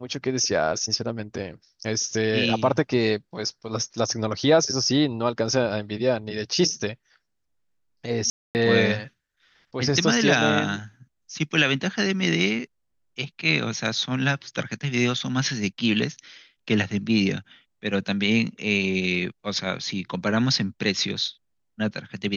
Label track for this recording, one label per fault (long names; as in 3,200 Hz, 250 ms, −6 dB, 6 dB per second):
8.300000	8.550000	drop-out 249 ms